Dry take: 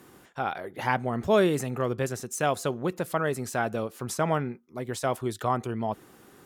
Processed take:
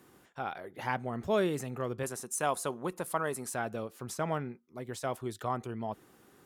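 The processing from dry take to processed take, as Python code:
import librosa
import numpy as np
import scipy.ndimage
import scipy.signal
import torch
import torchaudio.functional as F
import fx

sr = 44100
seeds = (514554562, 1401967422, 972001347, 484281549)

y = fx.cheby_harmonics(x, sr, harmonics=(8,), levels_db=(-45,), full_scale_db=-10.0)
y = fx.graphic_eq_15(y, sr, hz=(100, 1000, 10000), db=(-10, 7, 11), at=(2.03, 3.55))
y = F.gain(torch.from_numpy(y), -7.0).numpy()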